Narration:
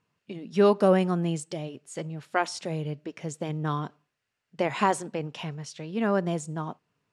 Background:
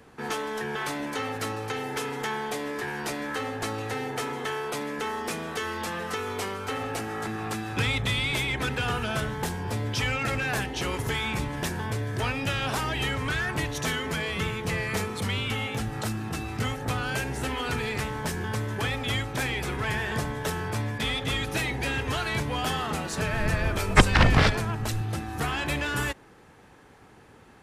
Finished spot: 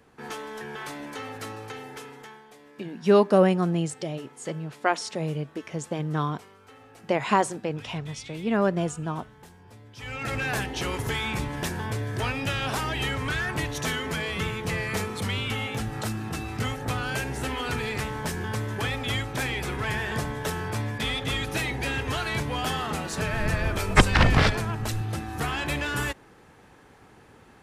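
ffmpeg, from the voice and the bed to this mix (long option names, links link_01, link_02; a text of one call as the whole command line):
ffmpeg -i stem1.wav -i stem2.wav -filter_complex "[0:a]adelay=2500,volume=2dB[link_01];[1:a]volume=14dB,afade=type=out:start_time=1.6:duration=0.84:silence=0.199526,afade=type=in:start_time=9.96:duration=0.46:silence=0.105925[link_02];[link_01][link_02]amix=inputs=2:normalize=0" out.wav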